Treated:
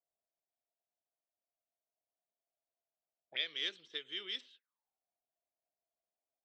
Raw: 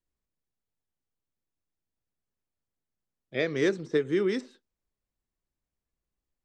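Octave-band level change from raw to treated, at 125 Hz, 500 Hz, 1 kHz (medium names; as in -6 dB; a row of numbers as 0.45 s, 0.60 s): under -35 dB, -27.0 dB, -16.5 dB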